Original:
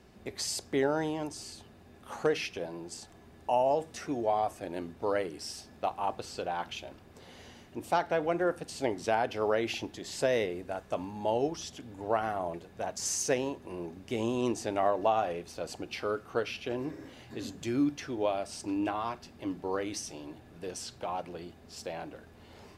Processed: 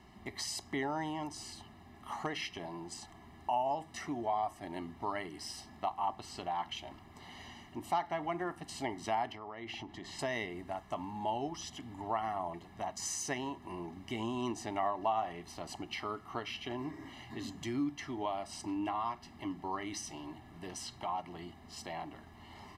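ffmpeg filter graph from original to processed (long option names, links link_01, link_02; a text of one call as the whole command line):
ffmpeg -i in.wav -filter_complex "[0:a]asettb=1/sr,asplit=3[link_01][link_02][link_03];[link_01]atrim=end=9.324[link_04];[link_02]atrim=start=9.32:end=10.19,asetpts=PTS-STARTPTS,afade=type=in:duration=0.004:curve=qsin,afade=type=out:start_time=0.866:duration=0.004:curve=qsin,lowpass=frequency=2700:poles=1,acompressor=threshold=-38dB:ratio=5:attack=3.2:release=140:knee=1:detection=peak[link_05];[link_03]atrim=start=10.186[link_06];[link_04][link_05]acrossfade=duration=0.004:curve1=hsin:curve2=qsin[link_07];[link_07][link_06]acrossfade=duration=0.004:curve1=qsin:curve2=hsin,bass=frequency=250:gain=-6,treble=frequency=4000:gain=-6,aecho=1:1:1:0.96,acompressor=threshold=-41dB:ratio=1.5" out.wav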